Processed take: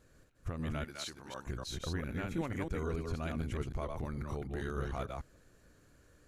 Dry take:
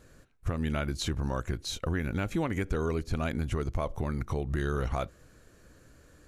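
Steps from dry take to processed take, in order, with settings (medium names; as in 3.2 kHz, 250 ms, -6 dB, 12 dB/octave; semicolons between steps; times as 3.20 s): chunks repeated in reverse 149 ms, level -3 dB; 0.84–1.47 s: high-pass 850 Hz 6 dB/octave; trim -8 dB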